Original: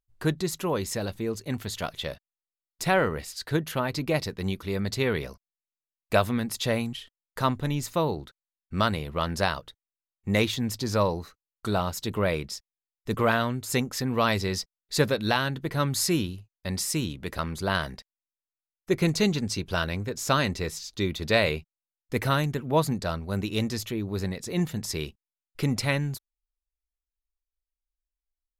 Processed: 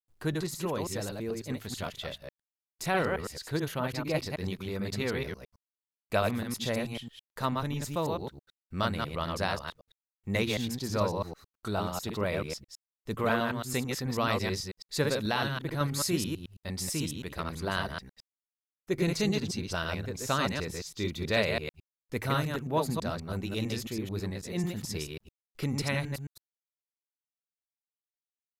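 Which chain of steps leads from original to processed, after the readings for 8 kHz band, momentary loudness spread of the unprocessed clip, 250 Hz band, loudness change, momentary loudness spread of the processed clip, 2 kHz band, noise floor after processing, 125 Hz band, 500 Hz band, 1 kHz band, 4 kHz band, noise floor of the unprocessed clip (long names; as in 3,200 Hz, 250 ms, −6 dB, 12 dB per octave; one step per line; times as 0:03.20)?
−4.5 dB, 10 LU, −4.5 dB, −4.5 dB, 10 LU, −4.5 dB, below −85 dBFS, −4.5 dB, −4.5 dB, −4.5 dB, −4.0 dB, below −85 dBFS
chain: delay that plays each chunk backwards 109 ms, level −3 dB
bit-depth reduction 12 bits, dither none
level −6 dB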